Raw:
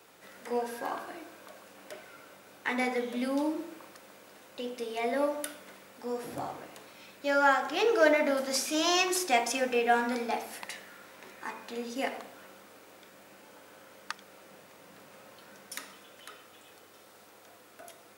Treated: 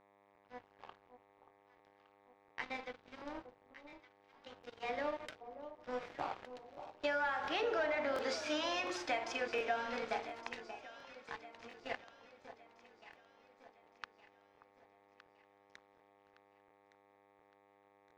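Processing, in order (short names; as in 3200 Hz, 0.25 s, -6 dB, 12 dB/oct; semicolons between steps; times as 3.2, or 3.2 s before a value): Doppler pass-by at 8.01, 10 m/s, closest 6.7 m; weighting filter A; sample leveller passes 2; compressor 16:1, threshold -35 dBFS, peak gain reduction 19 dB; buzz 100 Hz, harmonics 11, -64 dBFS -1 dB/oct; crossover distortion -59.5 dBFS; air absorption 170 m; on a send: echo with dull and thin repeats by turns 0.582 s, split 1100 Hz, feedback 65%, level -10.5 dB; on the sum: crackling interface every 0.71 s, samples 1024, repeat, from 0.33; gain +3.5 dB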